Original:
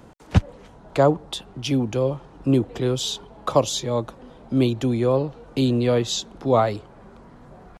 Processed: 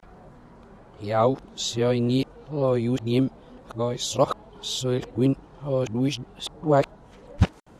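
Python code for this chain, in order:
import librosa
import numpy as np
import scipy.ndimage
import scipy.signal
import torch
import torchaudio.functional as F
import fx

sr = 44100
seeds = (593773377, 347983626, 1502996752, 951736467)

y = x[::-1].copy()
y = F.gain(torch.from_numpy(y), -2.5).numpy()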